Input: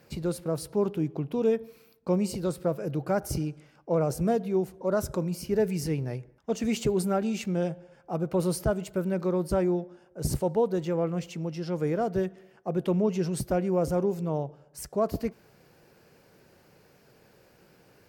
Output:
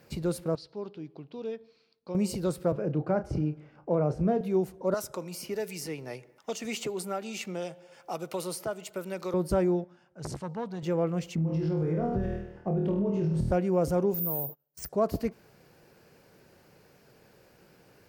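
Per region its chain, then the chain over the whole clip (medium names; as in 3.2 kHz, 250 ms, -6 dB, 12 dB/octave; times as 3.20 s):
0.55–2.15 s: four-pole ladder low-pass 5 kHz, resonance 60% + bass shelf 120 Hz -11 dB
2.72–4.41 s: tape spacing loss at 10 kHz 27 dB + doubling 33 ms -11 dB + three bands compressed up and down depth 40%
4.94–9.34 s: high-pass 850 Hz 6 dB/octave + band-stop 1.6 kHz, Q 10 + three bands compressed up and down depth 70%
9.84–10.83 s: band-pass 100–6100 Hz + peaking EQ 430 Hz -12.5 dB 1.2 oct + transformer saturation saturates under 800 Hz
11.35–13.52 s: RIAA curve playback + flutter echo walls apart 4.3 m, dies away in 0.65 s + compression, threshold -25 dBFS
14.14–14.89 s: gate -48 dBFS, range -28 dB + compression 3:1, threshold -33 dBFS + careless resampling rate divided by 3×, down filtered, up zero stuff
whole clip: none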